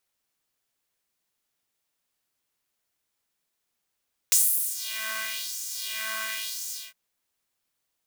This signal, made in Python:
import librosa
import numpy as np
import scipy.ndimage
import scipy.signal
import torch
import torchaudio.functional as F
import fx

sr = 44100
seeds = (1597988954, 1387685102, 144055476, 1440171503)

y = fx.sub_patch_wobble(sr, seeds[0], note=57, wave='square', wave2='saw', interval_st=-12, level2_db=-15.5, sub_db=-15.0, noise_db=-6.0, kind='highpass', cutoff_hz=1600.0, q=1.9, env_oct=2.0, env_decay_s=0.85, env_sustain_pct=45, attack_ms=1.1, decay_s=0.43, sustain_db=-16.0, release_s=0.22, note_s=2.39, lfo_hz=0.95, wobble_oct=1.1)